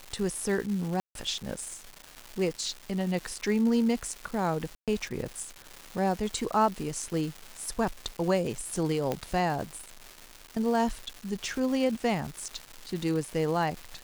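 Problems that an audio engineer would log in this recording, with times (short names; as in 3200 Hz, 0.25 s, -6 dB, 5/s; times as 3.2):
crackle 510/s -35 dBFS
1–1.15 gap 0.152 s
4.75–4.88 gap 0.127 s
9.12 pop -15 dBFS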